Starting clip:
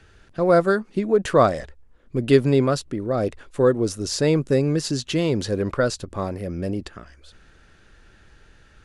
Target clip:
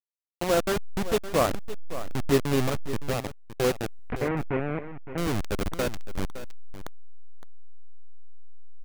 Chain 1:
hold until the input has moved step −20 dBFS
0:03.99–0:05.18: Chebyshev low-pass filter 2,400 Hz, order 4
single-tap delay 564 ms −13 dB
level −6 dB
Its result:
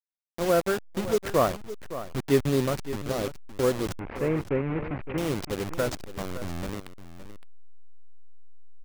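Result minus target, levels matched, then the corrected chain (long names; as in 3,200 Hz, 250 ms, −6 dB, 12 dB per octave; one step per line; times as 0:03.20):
hold until the input has moved: distortion −8 dB
hold until the input has moved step −14 dBFS
0:03.99–0:05.18: Chebyshev low-pass filter 2,400 Hz, order 4
single-tap delay 564 ms −13 dB
level −6 dB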